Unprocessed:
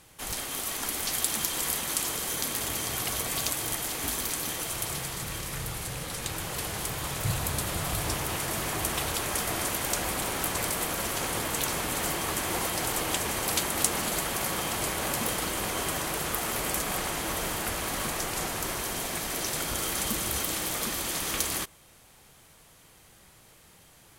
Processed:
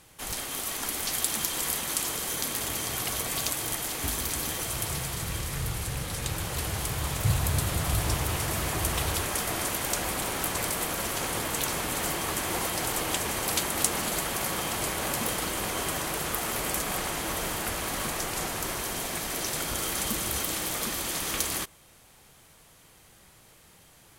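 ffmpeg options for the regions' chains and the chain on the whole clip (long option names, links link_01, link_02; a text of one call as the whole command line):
ffmpeg -i in.wav -filter_complex "[0:a]asettb=1/sr,asplit=3[link_01][link_02][link_03];[link_01]atrim=end=4.034[link_04];[link_02]atrim=start=4.03:end=9.27,asetpts=PTS-STARTPTS,afade=type=in:duration=0.004:curve=qsin,afade=type=out:start_time=5.236:duration=0.004:curve=qsin,equalizer=frequency=73:width_type=o:width=1.5:gain=8.5,aecho=1:1:310:0.335,atrim=end_sample=231084[link_05];[link_03]atrim=start=9.266[link_06];[link_04][link_05]acrossfade=duration=0.004:curve1=hsin:curve2=qsin[link_07];[link_07][link_06]acrossfade=duration=0.004:curve1=qsin:curve2=hsin" out.wav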